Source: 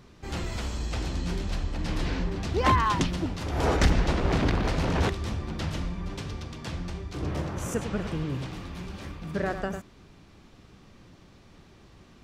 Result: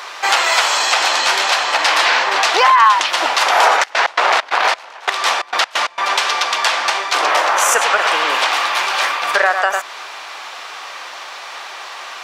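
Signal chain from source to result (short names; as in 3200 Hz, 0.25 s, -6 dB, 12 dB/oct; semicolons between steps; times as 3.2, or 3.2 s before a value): HPF 760 Hz 24 dB/oct; high shelf 4400 Hz -6 dB; compressor 3:1, threshold -44 dBFS, peak gain reduction 17.5 dB; 3.8–6.09 step gate ".x.x.xx.xx...xxx" 133 bpm -24 dB; maximiser +33 dB; gain -1 dB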